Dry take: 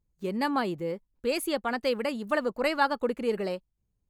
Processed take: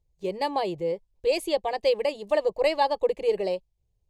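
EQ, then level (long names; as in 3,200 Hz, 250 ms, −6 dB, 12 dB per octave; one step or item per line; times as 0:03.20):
high-frequency loss of the air 57 metres
phaser with its sweep stopped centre 580 Hz, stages 4
+6.0 dB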